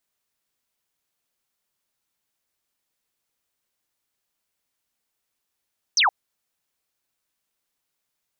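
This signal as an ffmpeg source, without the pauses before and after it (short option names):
-f lavfi -i "aevalsrc='0.178*clip(t/0.002,0,1)*clip((0.12-t)/0.002,0,1)*sin(2*PI*6400*0.12/log(700/6400)*(exp(log(700/6400)*t/0.12)-1))':d=0.12:s=44100"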